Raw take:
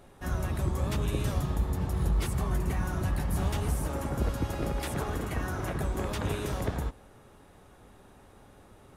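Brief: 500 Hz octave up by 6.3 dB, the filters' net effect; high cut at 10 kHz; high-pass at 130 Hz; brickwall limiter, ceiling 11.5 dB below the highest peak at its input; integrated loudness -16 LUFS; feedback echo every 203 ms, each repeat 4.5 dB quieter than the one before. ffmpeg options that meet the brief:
-af "highpass=130,lowpass=10000,equalizer=f=500:t=o:g=8,alimiter=level_in=1.06:limit=0.0631:level=0:latency=1,volume=0.944,aecho=1:1:203|406|609|812|1015|1218|1421|1624|1827:0.596|0.357|0.214|0.129|0.0772|0.0463|0.0278|0.0167|0.01,volume=6.68"

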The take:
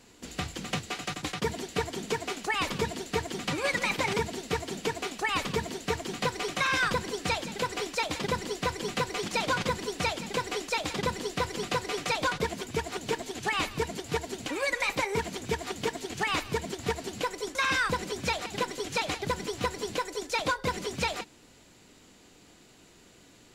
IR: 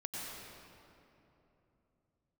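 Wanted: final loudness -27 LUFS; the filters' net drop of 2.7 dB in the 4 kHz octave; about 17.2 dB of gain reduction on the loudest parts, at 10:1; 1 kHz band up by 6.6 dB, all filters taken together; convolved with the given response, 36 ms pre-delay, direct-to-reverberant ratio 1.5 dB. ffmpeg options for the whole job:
-filter_complex "[0:a]equalizer=f=1000:t=o:g=7.5,equalizer=f=4000:t=o:g=-4,acompressor=threshold=0.0126:ratio=10,asplit=2[s0][s1];[1:a]atrim=start_sample=2205,adelay=36[s2];[s1][s2]afir=irnorm=-1:irlink=0,volume=0.75[s3];[s0][s3]amix=inputs=2:normalize=0,volume=4.22"

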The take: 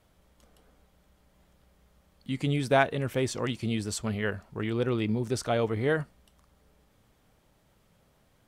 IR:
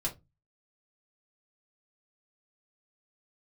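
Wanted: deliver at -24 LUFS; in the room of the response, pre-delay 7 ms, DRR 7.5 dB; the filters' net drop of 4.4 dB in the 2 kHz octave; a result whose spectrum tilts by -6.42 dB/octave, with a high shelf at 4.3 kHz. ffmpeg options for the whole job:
-filter_complex "[0:a]equalizer=f=2000:t=o:g=-5.5,highshelf=f=4300:g=-3.5,asplit=2[s0][s1];[1:a]atrim=start_sample=2205,adelay=7[s2];[s1][s2]afir=irnorm=-1:irlink=0,volume=0.299[s3];[s0][s3]amix=inputs=2:normalize=0,volume=1.68"

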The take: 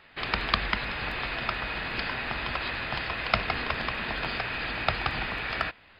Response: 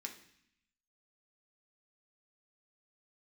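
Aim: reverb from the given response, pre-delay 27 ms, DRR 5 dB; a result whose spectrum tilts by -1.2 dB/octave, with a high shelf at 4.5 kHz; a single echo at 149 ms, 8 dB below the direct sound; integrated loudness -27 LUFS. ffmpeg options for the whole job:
-filter_complex "[0:a]highshelf=f=4500:g=3.5,aecho=1:1:149:0.398,asplit=2[s0][s1];[1:a]atrim=start_sample=2205,adelay=27[s2];[s1][s2]afir=irnorm=-1:irlink=0,volume=0.75[s3];[s0][s3]amix=inputs=2:normalize=0,volume=1.06"

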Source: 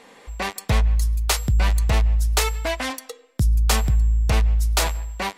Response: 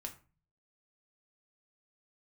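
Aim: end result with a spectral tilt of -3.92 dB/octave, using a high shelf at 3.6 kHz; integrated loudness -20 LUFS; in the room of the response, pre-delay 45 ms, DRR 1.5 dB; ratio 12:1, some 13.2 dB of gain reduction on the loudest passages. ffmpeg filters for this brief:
-filter_complex "[0:a]highshelf=f=3600:g=4,acompressor=threshold=0.0398:ratio=12,asplit=2[s0][s1];[1:a]atrim=start_sample=2205,adelay=45[s2];[s1][s2]afir=irnorm=-1:irlink=0,volume=1.19[s3];[s0][s3]amix=inputs=2:normalize=0,volume=4.22"

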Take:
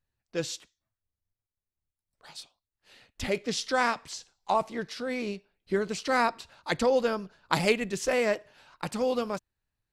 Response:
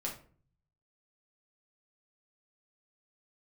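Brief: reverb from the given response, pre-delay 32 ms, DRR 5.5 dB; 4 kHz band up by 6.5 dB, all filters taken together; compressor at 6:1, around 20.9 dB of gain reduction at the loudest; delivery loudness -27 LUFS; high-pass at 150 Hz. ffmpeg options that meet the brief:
-filter_complex "[0:a]highpass=150,equalizer=f=4000:t=o:g=8,acompressor=threshold=0.00891:ratio=6,asplit=2[s0][s1];[1:a]atrim=start_sample=2205,adelay=32[s2];[s1][s2]afir=irnorm=-1:irlink=0,volume=0.447[s3];[s0][s3]amix=inputs=2:normalize=0,volume=6.31"

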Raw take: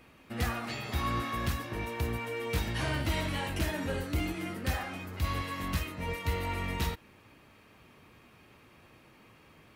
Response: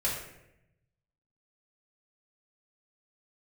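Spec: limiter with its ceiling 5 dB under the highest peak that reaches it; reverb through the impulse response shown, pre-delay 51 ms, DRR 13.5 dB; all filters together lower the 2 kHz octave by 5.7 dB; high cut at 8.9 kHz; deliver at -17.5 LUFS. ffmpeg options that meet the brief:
-filter_complex "[0:a]lowpass=8900,equalizer=f=2000:t=o:g=-7,alimiter=level_in=1.19:limit=0.0631:level=0:latency=1,volume=0.841,asplit=2[s0][s1];[1:a]atrim=start_sample=2205,adelay=51[s2];[s1][s2]afir=irnorm=-1:irlink=0,volume=0.0891[s3];[s0][s3]amix=inputs=2:normalize=0,volume=8.41"

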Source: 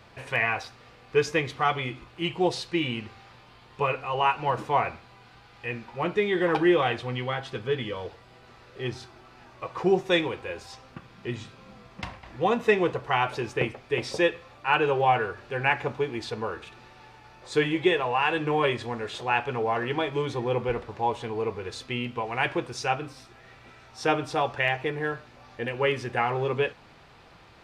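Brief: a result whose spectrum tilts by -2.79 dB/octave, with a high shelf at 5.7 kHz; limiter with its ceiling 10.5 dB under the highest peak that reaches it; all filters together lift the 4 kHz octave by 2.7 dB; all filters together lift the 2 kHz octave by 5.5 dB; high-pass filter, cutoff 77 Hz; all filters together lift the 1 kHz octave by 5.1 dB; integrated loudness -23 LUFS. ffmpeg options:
-af "highpass=77,equalizer=f=1000:t=o:g=5.5,equalizer=f=2000:t=o:g=5.5,equalizer=f=4000:t=o:g=3.5,highshelf=f=5700:g=-8.5,volume=1.5,alimiter=limit=0.335:level=0:latency=1"

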